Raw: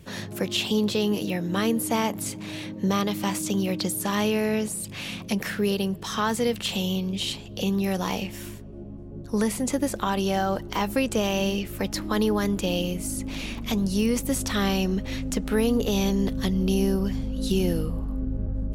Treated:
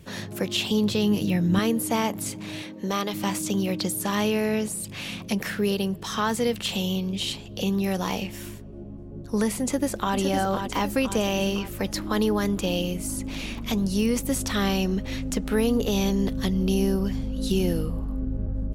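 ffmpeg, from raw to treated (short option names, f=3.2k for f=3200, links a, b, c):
-filter_complex "[0:a]asettb=1/sr,asplit=3[a][b][c];[a]atrim=end=0.574[d];[b]atrim=start=0.57:end=1.59,asetpts=PTS-STARTPTS,afade=t=in:d=0.004:c=qsin,afade=t=out:st=1.016:d=0.004:c=qsin,asubboost=boost=10:cutoff=230[e];[c]atrim=start=1.586[f];[d][e]acrossfade=d=0.004:c1=hsin:c2=qsin[g];[g][f]acrossfade=d=0.004:c1=qsin:c2=hsin,asettb=1/sr,asplit=3[h][i][j];[h]atrim=end=2.624[k];[i]atrim=start=2.62:end=3.14,asetpts=PTS-STARTPTS,afade=t=in:d=0.004:c=qsin,afade=t=out:st=0.516:d=0.004:c=qsin,equalizer=f=95:t=o:w=1.8:g=-14[l];[j]atrim=start=3.136[m];[k][l]acrossfade=d=0.004:c1=hsin:c2=qsin[n];[n][m]acrossfade=d=0.004:c1=qsin:c2=hsin,asplit=2[o][p];[p]afade=t=in:st=9.62:d=0.01,afade=t=out:st=10.16:d=0.01,aecho=0:1:510|1020|1530|2040|2550|3060|3570:0.501187|0.275653|0.151609|0.083385|0.0458618|0.025224|0.0138732[q];[o][q]amix=inputs=2:normalize=0"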